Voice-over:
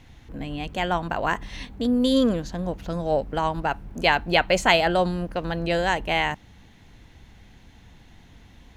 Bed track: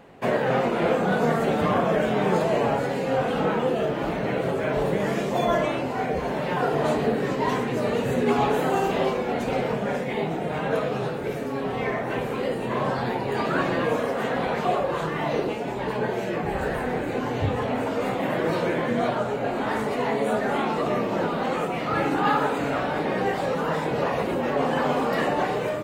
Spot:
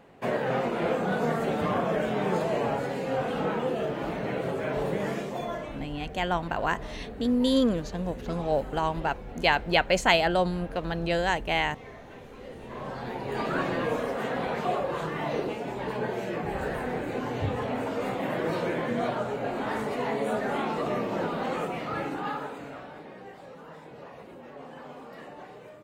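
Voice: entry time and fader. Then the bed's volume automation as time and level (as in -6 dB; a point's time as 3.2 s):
5.40 s, -3.0 dB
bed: 5.08 s -5 dB
6 s -19 dB
12.3 s -19 dB
13.41 s -4.5 dB
21.67 s -4.5 dB
23.2 s -20.5 dB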